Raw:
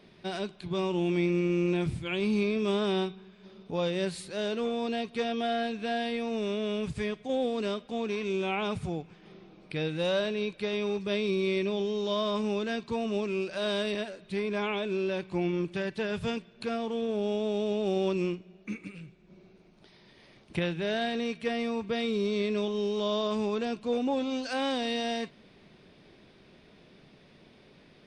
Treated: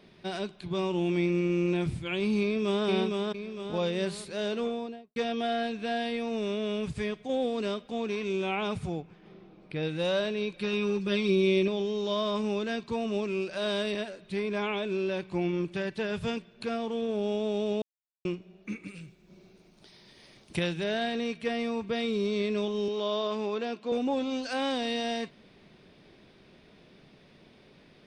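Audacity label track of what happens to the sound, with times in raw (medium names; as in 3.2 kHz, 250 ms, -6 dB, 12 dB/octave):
2.420000	2.860000	echo throw 460 ms, feedback 45%, level -3 dB
4.590000	5.160000	studio fade out
9.000000	9.830000	treble shelf 2.9 kHz -8.5 dB
10.530000	11.680000	comb 5.6 ms, depth 79%
17.820000	18.250000	mute
18.880000	20.840000	tone controls bass 0 dB, treble +10 dB
22.880000	23.920000	band-pass 260–5400 Hz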